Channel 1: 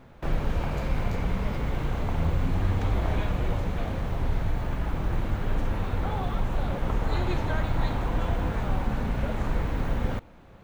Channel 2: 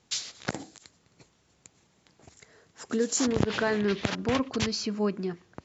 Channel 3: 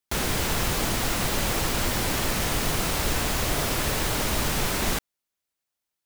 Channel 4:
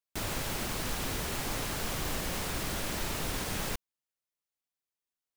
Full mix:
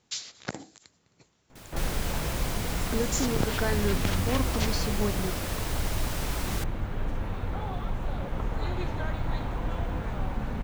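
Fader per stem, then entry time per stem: -4.0, -3.0, -9.0, -13.5 dB; 1.50, 0.00, 1.65, 1.40 s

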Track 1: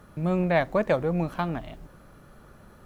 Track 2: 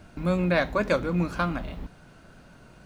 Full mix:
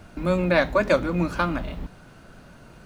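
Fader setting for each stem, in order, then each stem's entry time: -5.0, +3.0 dB; 0.00, 0.00 s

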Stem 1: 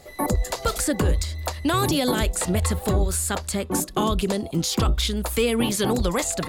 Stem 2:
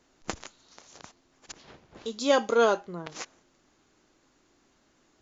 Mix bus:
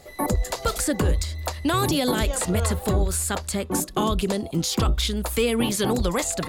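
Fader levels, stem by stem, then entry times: -0.5, -11.5 dB; 0.00, 0.00 s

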